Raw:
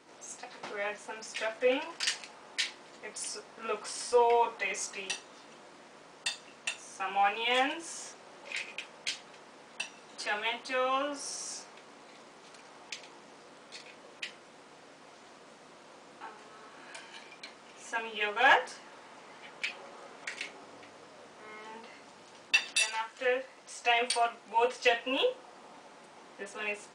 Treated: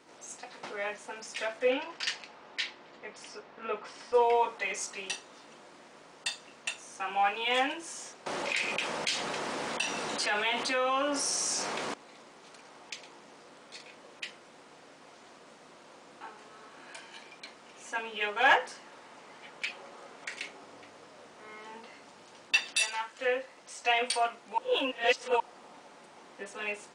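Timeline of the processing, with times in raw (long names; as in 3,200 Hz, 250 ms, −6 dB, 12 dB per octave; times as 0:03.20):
0:01.70–0:04.13: low-pass filter 5,600 Hz → 2,800 Hz
0:08.26–0:11.94: envelope flattener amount 70%
0:24.58–0:25.40: reverse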